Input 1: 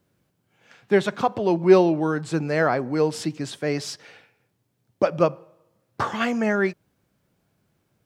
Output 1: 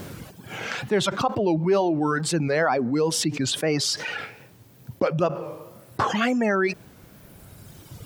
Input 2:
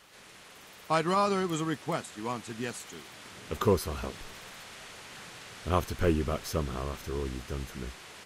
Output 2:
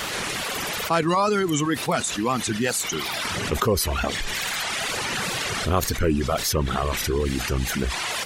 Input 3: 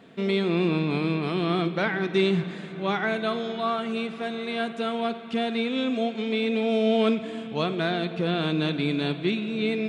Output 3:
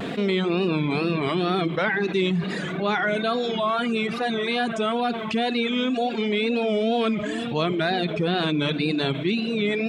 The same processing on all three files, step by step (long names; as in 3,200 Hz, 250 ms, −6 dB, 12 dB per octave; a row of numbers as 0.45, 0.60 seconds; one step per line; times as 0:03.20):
tape wow and flutter 95 cents
reverb reduction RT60 1.7 s
envelope flattener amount 70%
loudness normalisation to −24 LKFS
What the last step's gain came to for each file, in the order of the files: −8.0, +2.0, −1.0 decibels